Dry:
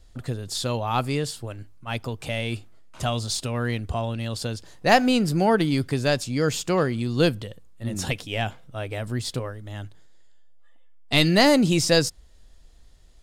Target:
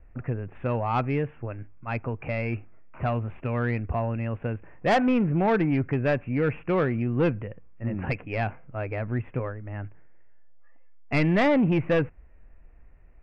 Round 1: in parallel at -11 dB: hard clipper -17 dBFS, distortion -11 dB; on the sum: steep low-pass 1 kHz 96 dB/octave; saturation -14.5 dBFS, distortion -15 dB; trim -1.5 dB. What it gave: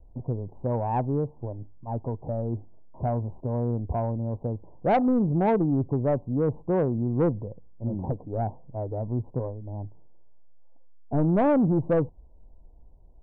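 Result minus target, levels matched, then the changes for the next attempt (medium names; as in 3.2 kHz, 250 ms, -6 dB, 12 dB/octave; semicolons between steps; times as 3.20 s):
2 kHz band -12.5 dB; hard clipper: distortion +11 dB
change: hard clipper -10.5 dBFS, distortion -22 dB; change: steep low-pass 2.6 kHz 96 dB/octave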